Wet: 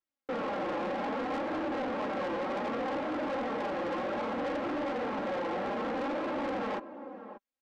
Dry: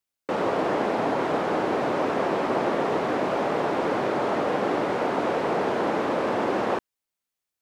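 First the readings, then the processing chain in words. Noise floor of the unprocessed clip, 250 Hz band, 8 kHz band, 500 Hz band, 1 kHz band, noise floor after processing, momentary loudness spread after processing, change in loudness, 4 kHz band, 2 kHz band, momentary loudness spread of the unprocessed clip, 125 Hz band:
below −85 dBFS, −7.0 dB, can't be measured, −9.0 dB, −8.5 dB, below −85 dBFS, 3 LU, −8.5 dB, −8.0 dB, −7.5 dB, 1 LU, −11.5 dB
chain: flanger 0.64 Hz, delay 2.9 ms, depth 3 ms, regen +32%
low-pass filter 1,500 Hz 6 dB per octave
comb filter 3.7 ms, depth 85%
slap from a distant wall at 100 metres, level −17 dB
soft clipping −30 dBFS, distortion −8 dB
low-shelf EQ 93 Hz −8.5 dB

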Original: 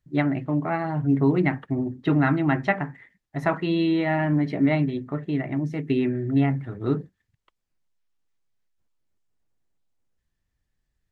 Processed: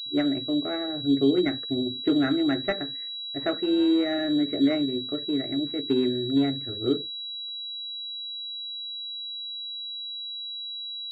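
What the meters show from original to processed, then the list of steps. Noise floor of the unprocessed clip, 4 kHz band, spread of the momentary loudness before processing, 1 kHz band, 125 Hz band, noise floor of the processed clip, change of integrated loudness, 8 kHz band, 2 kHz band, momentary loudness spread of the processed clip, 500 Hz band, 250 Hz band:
−79 dBFS, +17.0 dB, 7 LU, −9.5 dB, −13.5 dB, −36 dBFS, −2.5 dB, can't be measured, −7.0 dB, 10 LU, 0.0 dB, −0.5 dB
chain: phaser with its sweep stopped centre 390 Hz, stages 4
switching amplifier with a slow clock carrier 3,900 Hz
level +1.5 dB

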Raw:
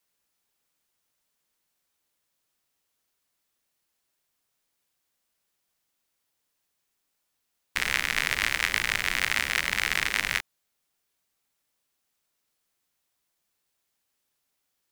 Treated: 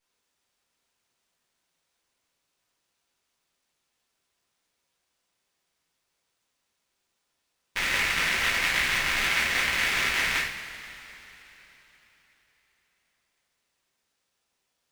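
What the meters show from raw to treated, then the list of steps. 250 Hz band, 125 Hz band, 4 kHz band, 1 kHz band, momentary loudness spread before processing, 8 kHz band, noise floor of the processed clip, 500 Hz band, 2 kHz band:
+3.0 dB, +1.5 dB, +2.0 dB, +3.0 dB, 5 LU, +0.5 dB, −79 dBFS, +4.0 dB, +1.5 dB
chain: coupled-rooms reverb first 0.52 s, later 3.9 s, from −18 dB, DRR −9.5 dB
windowed peak hold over 3 samples
level −7.5 dB

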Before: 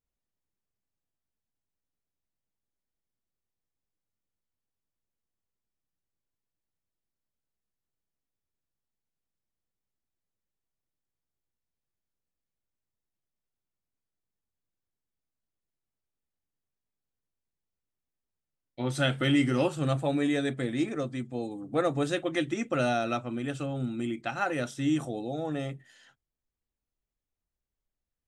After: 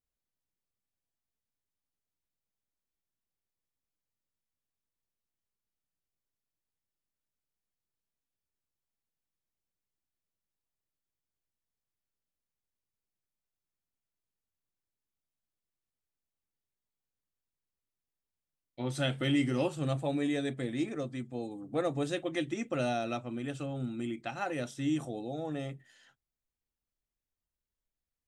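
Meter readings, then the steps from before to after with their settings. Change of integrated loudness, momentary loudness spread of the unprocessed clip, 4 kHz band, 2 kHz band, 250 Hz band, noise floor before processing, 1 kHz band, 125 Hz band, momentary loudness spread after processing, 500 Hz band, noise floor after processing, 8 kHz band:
−4.5 dB, 9 LU, −4.0 dB, −6.0 dB, −4.0 dB, below −85 dBFS, −5.5 dB, −4.0 dB, 8 LU, −4.0 dB, below −85 dBFS, −4.0 dB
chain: dynamic equaliser 1,400 Hz, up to −5 dB, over −47 dBFS, Q 2.4
level −4 dB

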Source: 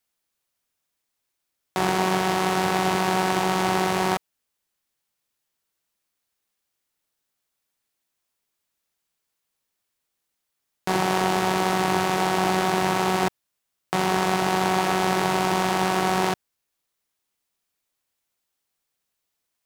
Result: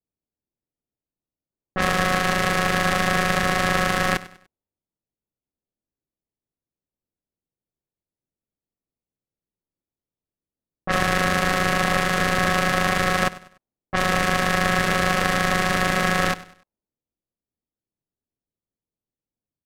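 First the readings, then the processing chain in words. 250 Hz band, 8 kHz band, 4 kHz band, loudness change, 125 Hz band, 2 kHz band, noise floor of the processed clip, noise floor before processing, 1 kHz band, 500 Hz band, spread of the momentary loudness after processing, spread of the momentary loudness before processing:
−0.5 dB, +1.5 dB, +2.5 dB, +2.0 dB, +3.5 dB, +7.0 dB, below −85 dBFS, −80 dBFS, −0.5 dB, −0.5 dB, 5 LU, 5 LU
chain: ring modulation 920 Hz
low-pass that shuts in the quiet parts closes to 360 Hz, open at −23.5 dBFS
repeating echo 98 ms, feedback 36%, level −18 dB
level +4.5 dB

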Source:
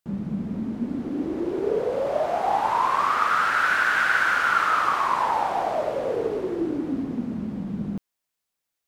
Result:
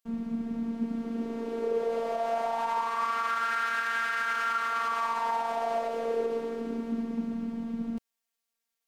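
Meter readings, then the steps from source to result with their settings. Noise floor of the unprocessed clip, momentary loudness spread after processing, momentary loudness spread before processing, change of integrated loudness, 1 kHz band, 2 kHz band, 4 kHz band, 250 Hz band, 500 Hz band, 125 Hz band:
−83 dBFS, 6 LU, 10 LU, −6.5 dB, −7.0 dB, −9.5 dB, −7.0 dB, −4.5 dB, −4.5 dB, below −10 dB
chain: low-shelf EQ 430 Hz −3.5 dB
brickwall limiter −19 dBFS, peak gain reduction 9 dB
phases set to zero 230 Hz

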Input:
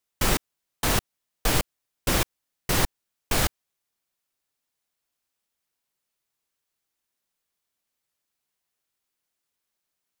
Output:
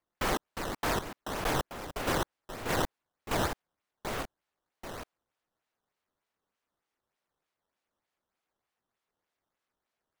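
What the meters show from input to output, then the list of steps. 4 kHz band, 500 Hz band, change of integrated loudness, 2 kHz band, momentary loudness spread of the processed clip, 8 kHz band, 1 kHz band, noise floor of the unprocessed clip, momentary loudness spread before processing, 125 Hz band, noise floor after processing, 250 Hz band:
−8.5 dB, −1.5 dB, −7.5 dB, −4.5 dB, 13 LU, −11.5 dB, −1.0 dB, −83 dBFS, 7 LU, −8.0 dB, below −85 dBFS, −4.0 dB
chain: mid-hump overdrive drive 18 dB, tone 1,100 Hz, clips at −8.5 dBFS
delay with pitch and tempo change per echo 331 ms, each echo −2 semitones, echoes 2, each echo −6 dB
sample-and-hold swept by an LFO 11×, swing 160% 3.3 Hz
level −6.5 dB

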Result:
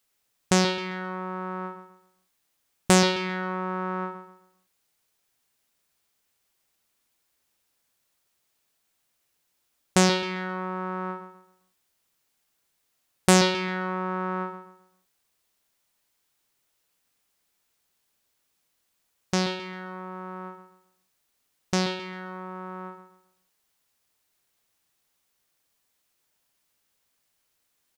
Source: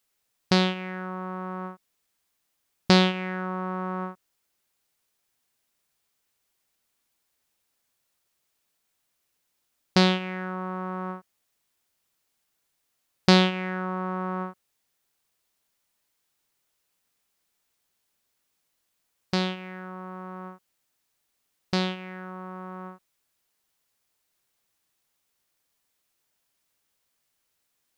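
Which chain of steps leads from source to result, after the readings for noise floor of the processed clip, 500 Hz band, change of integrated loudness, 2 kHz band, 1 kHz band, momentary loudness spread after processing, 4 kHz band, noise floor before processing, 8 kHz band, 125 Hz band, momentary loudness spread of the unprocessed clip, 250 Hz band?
−75 dBFS, +1.5 dB, 0.0 dB, +1.0 dB, +1.5 dB, 19 LU, −1.0 dB, −77 dBFS, +13.5 dB, −1.0 dB, 19 LU, −1.0 dB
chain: repeating echo 132 ms, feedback 32%, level −10 dB
highs frequency-modulated by the lows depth 0.64 ms
level +1.5 dB

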